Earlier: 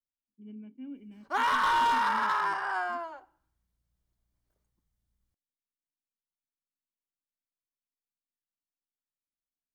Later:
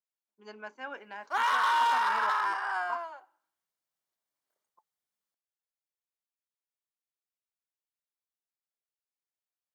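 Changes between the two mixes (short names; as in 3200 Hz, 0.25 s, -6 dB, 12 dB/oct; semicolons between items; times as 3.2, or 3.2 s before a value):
speech: remove vocal tract filter i; master: add HPF 580 Hz 12 dB/oct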